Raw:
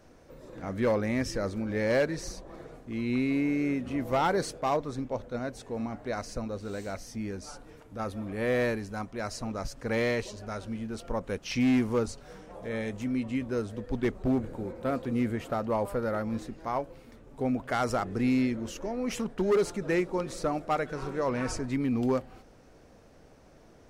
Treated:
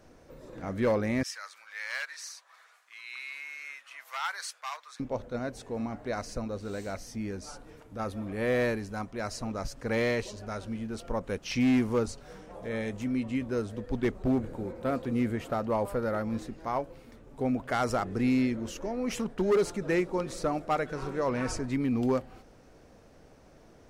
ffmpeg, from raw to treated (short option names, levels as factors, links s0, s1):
-filter_complex "[0:a]asettb=1/sr,asplit=3[s0][s1][s2];[s0]atrim=end=1.234[s3];[s1]atrim=start=1.23:end=5,asetpts=PTS-STARTPTS,afade=t=in:d=0.004:c=qsin,afade=t=out:st=3.766:d=0.004:c=qsin,highpass=f=1200:w=0.5412,highpass=f=1200:w=1.3066[s4];[s2]atrim=start=4.996[s5];[s3][s4]acrossfade=d=0.004:c1=hsin:c2=qsin[s6];[s6][s5]acrossfade=d=0.004:c1=qsin:c2=hsin"